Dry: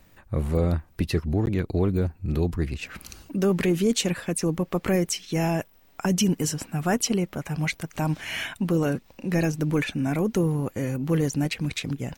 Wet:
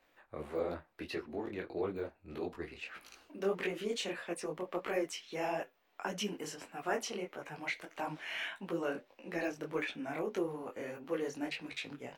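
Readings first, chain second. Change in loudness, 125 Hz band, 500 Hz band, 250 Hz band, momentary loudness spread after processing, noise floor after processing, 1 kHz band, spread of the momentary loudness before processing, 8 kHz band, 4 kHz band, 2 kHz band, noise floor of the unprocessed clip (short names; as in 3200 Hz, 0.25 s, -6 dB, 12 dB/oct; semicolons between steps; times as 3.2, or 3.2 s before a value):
-13.0 dB, -26.0 dB, -9.0 dB, -16.5 dB, 8 LU, -71 dBFS, -7.5 dB, 7 LU, -17.0 dB, -10.5 dB, -7.5 dB, -57 dBFS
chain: flange 0.2 Hz, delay 7.8 ms, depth 4.2 ms, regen -74%; three-band isolator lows -23 dB, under 330 Hz, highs -12 dB, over 4000 Hz; detuned doubles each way 56 cents; gain +1 dB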